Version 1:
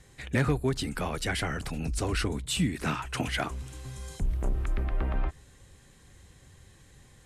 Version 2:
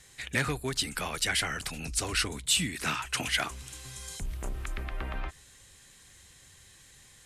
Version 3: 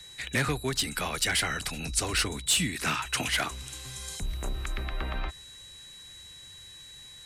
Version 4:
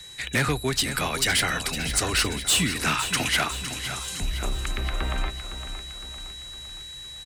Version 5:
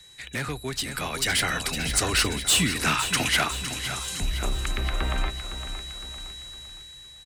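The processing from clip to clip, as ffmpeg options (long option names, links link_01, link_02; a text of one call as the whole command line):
ffmpeg -i in.wav -af "tiltshelf=frequency=1200:gain=-7.5" out.wav
ffmpeg -i in.wav -filter_complex "[0:a]acrossover=split=120|550|6700[link_01][link_02][link_03][link_04];[link_03]asoftclip=type=hard:threshold=-25.5dB[link_05];[link_01][link_02][link_05][link_04]amix=inputs=4:normalize=0,aeval=exprs='val(0)+0.00355*sin(2*PI*3900*n/s)':channel_layout=same,volume=2.5dB" out.wav
ffmpeg -i in.wav -filter_complex "[0:a]asoftclip=type=hard:threshold=-21dB,asplit=2[link_01][link_02];[link_02]aecho=0:1:510|1020|1530|2040|2550|3060:0.299|0.158|0.0839|0.0444|0.0236|0.0125[link_03];[link_01][link_03]amix=inputs=2:normalize=0,volume=4.5dB" out.wav
ffmpeg -i in.wav -af "dynaudnorm=framelen=490:gausssize=5:maxgain=8.5dB,volume=-7.5dB" out.wav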